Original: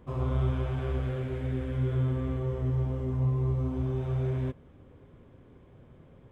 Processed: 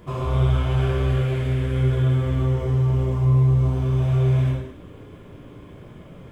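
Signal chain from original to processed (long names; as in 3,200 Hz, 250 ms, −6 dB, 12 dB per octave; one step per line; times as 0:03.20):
high-shelf EQ 2,300 Hz +7.5 dB
hum removal 218.3 Hz, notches 32
in parallel at +2 dB: downward compressor, threshold −37 dBFS, peak gain reduction 13.5 dB
on the sum: reverb whose tail is shaped and stops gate 280 ms falling, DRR −3.5 dB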